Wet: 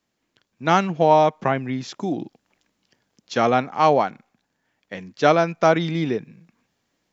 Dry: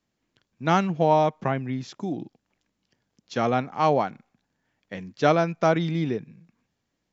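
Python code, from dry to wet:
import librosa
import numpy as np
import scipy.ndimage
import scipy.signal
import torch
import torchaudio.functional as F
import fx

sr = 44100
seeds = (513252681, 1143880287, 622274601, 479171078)

p1 = fx.low_shelf(x, sr, hz=190.0, db=-8.5)
p2 = fx.rider(p1, sr, range_db=5, speed_s=2.0)
p3 = p1 + F.gain(torch.from_numpy(p2), 3.0).numpy()
y = F.gain(torch.from_numpy(p3), -2.5).numpy()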